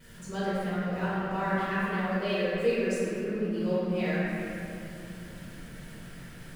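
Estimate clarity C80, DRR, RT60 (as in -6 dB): -2.5 dB, -13.5 dB, 2.9 s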